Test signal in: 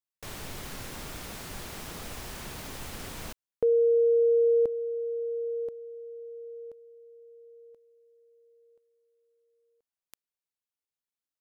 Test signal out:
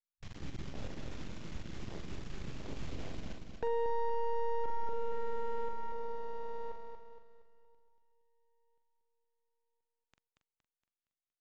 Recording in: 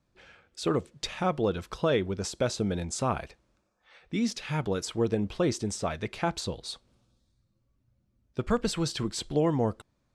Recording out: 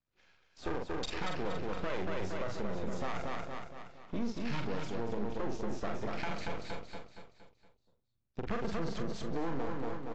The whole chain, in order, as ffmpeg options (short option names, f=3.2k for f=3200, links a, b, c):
-filter_complex "[0:a]afwtdn=0.0158,adynamicequalizer=threshold=0.0126:dfrequency=430:dqfactor=3.8:tfrequency=430:tqfactor=3.8:attack=5:release=100:ratio=0.375:range=2:mode=cutabove:tftype=bell,acrossover=split=400|3300[a][b][c];[b]crystalizer=i=5.5:c=0[d];[a][d][c]amix=inputs=3:normalize=0,aeval=exprs='max(val(0),0)':c=same,asplit=2[e][f];[f]adelay=43,volume=-7.5dB[g];[e][g]amix=inputs=2:normalize=0,asplit=2[h][i];[i]aecho=0:1:233|466|699|932|1165|1398:0.501|0.231|0.106|0.0488|0.0224|0.0103[j];[h][j]amix=inputs=2:normalize=0,acompressor=threshold=-29dB:ratio=10:attack=0.31:release=65:knee=6:detection=rms,volume=3dB" -ar 16000 -c:a aac -b:a 32k